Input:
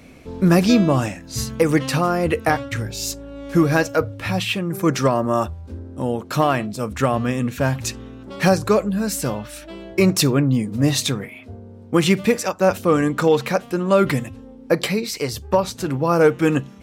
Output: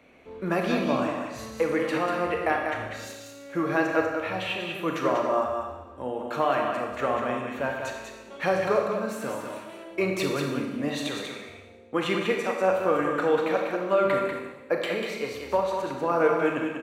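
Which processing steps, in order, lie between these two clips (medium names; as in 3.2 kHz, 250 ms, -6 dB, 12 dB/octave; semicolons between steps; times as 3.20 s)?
three-band isolator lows -14 dB, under 330 Hz, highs -14 dB, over 3.4 kHz; band-stop 5.1 kHz, Q 6.5; on a send: delay 193 ms -5.5 dB; on the sum: Schroeder reverb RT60 1.1 s, combs from 28 ms, DRR 2 dB; trim -6.5 dB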